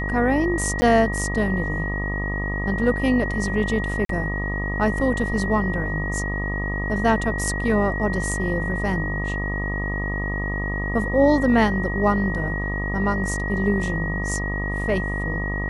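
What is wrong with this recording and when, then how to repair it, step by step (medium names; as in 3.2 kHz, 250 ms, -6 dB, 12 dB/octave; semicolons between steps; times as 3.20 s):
buzz 50 Hz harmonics 25 -27 dBFS
whine 1.9 kHz -28 dBFS
0.81–0.82 s: dropout 10 ms
4.05–4.09 s: dropout 43 ms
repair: band-stop 1.9 kHz, Q 30; de-hum 50 Hz, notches 25; interpolate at 0.81 s, 10 ms; interpolate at 4.05 s, 43 ms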